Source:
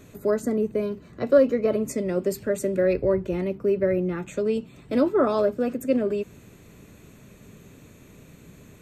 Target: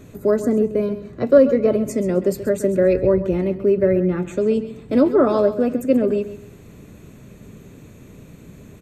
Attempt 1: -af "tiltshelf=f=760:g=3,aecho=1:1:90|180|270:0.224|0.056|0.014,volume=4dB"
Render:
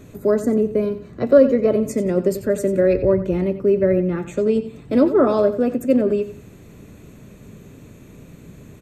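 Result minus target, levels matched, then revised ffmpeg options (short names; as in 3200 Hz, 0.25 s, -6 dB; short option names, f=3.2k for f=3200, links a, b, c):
echo 42 ms early
-af "tiltshelf=f=760:g=3,aecho=1:1:132|264|396:0.224|0.056|0.014,volume=4dB"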